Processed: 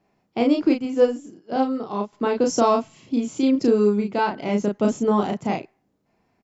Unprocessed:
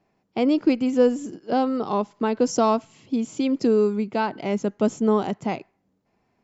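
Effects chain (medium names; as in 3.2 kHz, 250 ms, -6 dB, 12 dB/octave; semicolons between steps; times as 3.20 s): doubling 34 ms -2.5 dB; 0.69–2.13 s: upward expansion 1.5:1, over -32 dBFS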